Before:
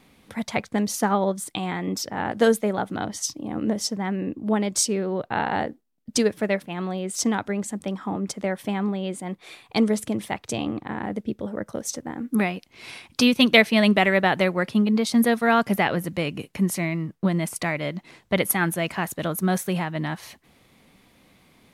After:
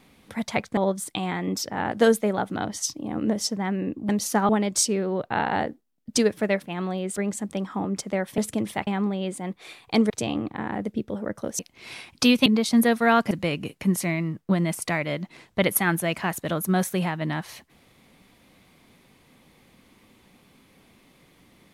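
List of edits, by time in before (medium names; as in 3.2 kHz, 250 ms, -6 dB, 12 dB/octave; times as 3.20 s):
0.77–1.17 s: move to 4.49 s
7.16–7.47 s: delete
9.92–10.41 s: move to 8.69 s
11.90–12.56 s: delete
13.43–14.87 s: delete
15.72–16.05 s: delete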